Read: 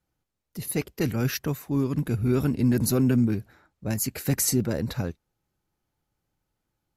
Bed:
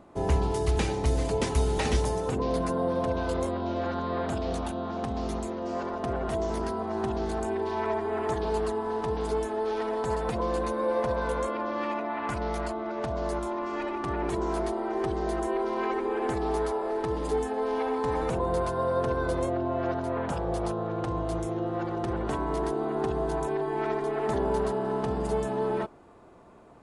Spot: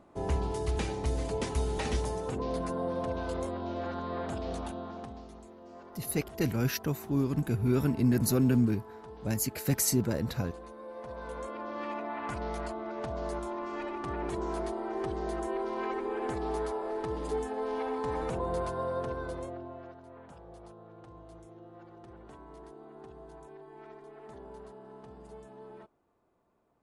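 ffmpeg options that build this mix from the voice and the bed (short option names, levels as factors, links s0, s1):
-filter_complex "[0:a]adelay=5400,volume=0.668[s0];[1:a]volume=2.24,afade=t=out:st=4.7:d=0.57:silence=0.251189,afade=t=in:st=10.94:d=1.12:silence=0.237137,afade=t=out:st=18.68:d=1.26:silence=0.16788[s1];[s0][s1]amix=inputs=2:normalize=0"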